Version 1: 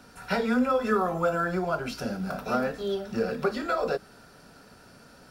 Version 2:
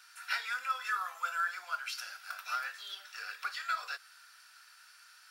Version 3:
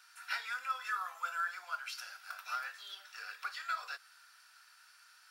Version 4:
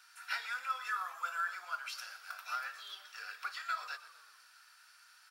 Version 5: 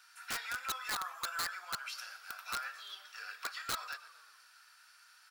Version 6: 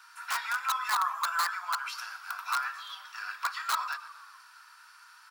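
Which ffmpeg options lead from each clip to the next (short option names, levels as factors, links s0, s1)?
-af "highpass=f=1400:w=0.5412,highpass=f=1400:w=1.3066"
-af "equalizer=f=890:w=1.5:g=3,volume=0.631"
-filter_complex "[0:a]asplit=6[s0][s1][s2][s3][s4][s5];[s1]adelay=123,afreqshift=-44,volume=0.168[s6];[s2]adelay=246,afreqshift=-88,volume=0.0891[s7];[s3]adelay=369,afreqshift=-132,volume=0.0473[s8];[s4]adelay=492,afreqshift=-176,volume=0.0251[s9];[s5]adelay=615,afreqshift=-220,volume=0.0132[s10];[s0][s6][s7][s8][s9][s10]amix=inputs=6:normalize=0"
-af "aeval=exprs='(mod(31.6*val(0)+1,2)-1)/31.6':c=same"
-af "highpass=f=1000:t=q:w=4.9,volume=1.41"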